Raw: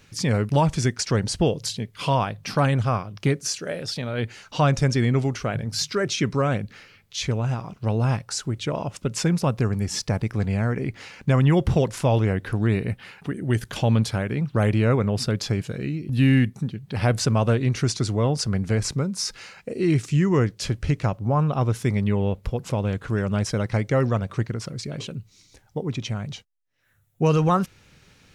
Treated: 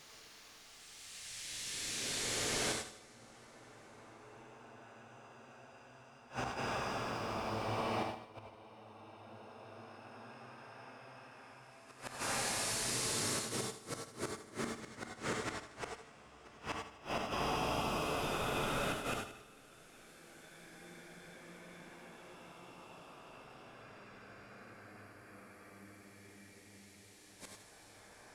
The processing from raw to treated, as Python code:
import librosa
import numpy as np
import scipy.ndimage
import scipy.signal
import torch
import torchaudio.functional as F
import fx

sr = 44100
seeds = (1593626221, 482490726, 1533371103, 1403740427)

y = fx.spec_clip(x, sr, under_db=26)
y = fx.paulstretch(y, sr, seeds[0], factor=8.9, window_s=0.5, from_s=6.89)
y = fx.gate_flip(y, sr, shuts_db=-18.0, range_db=-26)
y = fx.echo_feedback(y, sr, ms=78, feedback_pct=45, wet_db=-11.0)
y = fx.rev_gated(y, sr, seeds[1], gate_ms=120, shape='rising', drr_db=2.5)
y = y * 10.0 ** (-8.0 / 20.0)